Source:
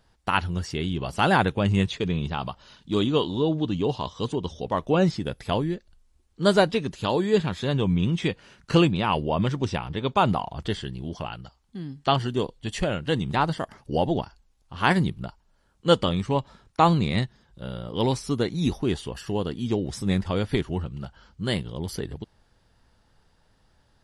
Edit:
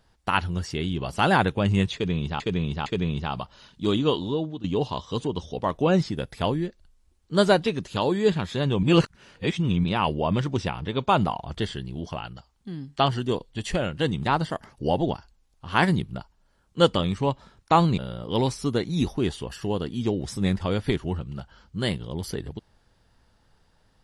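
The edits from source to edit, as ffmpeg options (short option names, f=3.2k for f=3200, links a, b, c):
-filter_complex "[0:a]asplit=7[a][b][c][d][e][f][g];[a]atrim=end=2.402[h];[b]atrim=start=1.938:end=2.402[i];[c]atrim=start=1.938:end=3.72,asetpts=PTS-STARTPTS,afade=t=out:st=1.332:d=0.45:silence=0.188365[j];[d]atrim=start=3.72:end=7.912,asetpts=PTS-STARTPTS,afade=t=in:d=0.004:c=hsin:silence=0.188365[k];[e]atrim=start=7.908:end=8.922,asetpts=PTS-STARTPTS,areverse[l];[f]atrim=start=8.918:end=17.062[m];[g]atrim=start=17.628[n];[h][i]acrossfade=d=0.004:c1=hsin:c2=hsin[o];[j][k]concat=n=2:v=0:a=1[p];[o][p]acrossfade=d=0.004:c1=hsin:c2=hsin[q];[q][l]acrossfade=d=0.004:c1=hsin:c2=hsin[r];[r][m]acrossfade=d=0.004:c1=hsin:c2=hsin[s];[s][n]acrossfade=d=0.004:c1=hsin:c2=hsin"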